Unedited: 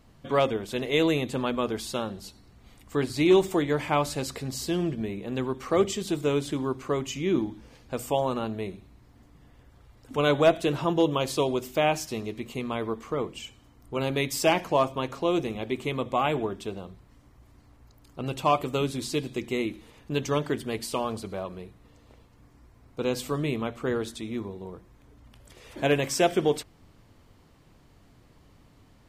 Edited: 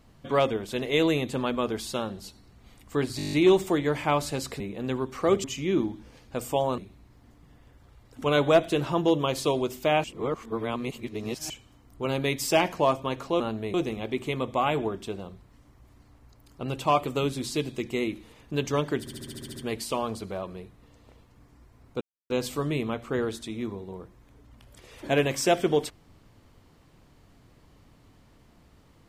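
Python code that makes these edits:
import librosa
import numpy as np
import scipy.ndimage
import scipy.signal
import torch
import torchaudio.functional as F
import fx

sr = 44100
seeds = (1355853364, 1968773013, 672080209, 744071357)

y = fx.edit(x, sr, fx.stutter(start_s=3.17, slice_s=0.02, count=9),
    fx.cut(start_s=4.44, length_s=0.64),
    fx.cut(start_s=5.92, length_s=1.1),
    fx.move(start_s=8.36, length_s=0.34, to_s=15.32),
    fx.reverse_span(start_s=11.96, length_s=1.46),
    fx.stutter(start_s=20.58, slice_s=0.07, count=9),
    fx.insert_silence(at_s=23.03, length_s=0.29), tone=tone)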